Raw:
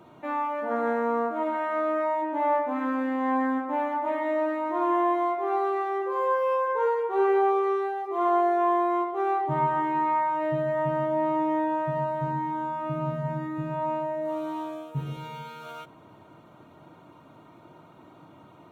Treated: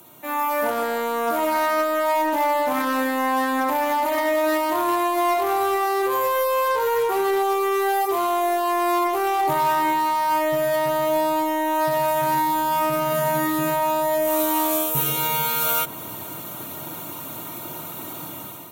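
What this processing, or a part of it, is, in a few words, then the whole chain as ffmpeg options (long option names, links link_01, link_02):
FM broadcast chain: -filter_complex "[0:a]highpass=52,dynaudnorm=framelen=220:gausssize=5:maxgain=14.5dB,acrossover=split=290|2500[link_01][link_02][link_03];[link_01]acompressor=threshold=-33dB:ratio=4[link_04];[link_02]acompressor=threshold=-13dB:ratio=4[link_05];[link_03]acompressor=threshold=-44dB:ratio=4[link_06];[link_04][link_05][link_06]amix=inputs=3:normalize=0,aemphasis=mode=production:type=75fm,alimiter=limit=-14dB:level=0:latency=1:release=22,asoftclip=type=hard:threshold=-16.5dB,lowpass=frequency=15000:width=0.5412,lowpass=frequency=15000:width=1.3066,aemphasis=mode=production:type=75fm"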